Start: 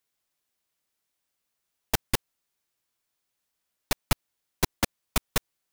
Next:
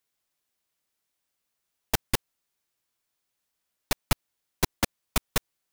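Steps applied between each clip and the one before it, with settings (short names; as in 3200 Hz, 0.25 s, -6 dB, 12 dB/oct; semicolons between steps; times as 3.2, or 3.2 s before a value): nothing audible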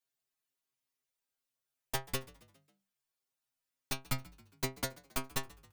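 metallic resonator 130 Hz, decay 0.25 s, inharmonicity 0.002; frequency-shifting echo 0.136 s, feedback 52%, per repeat +49 Hz, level -22 dB; gain +1 dB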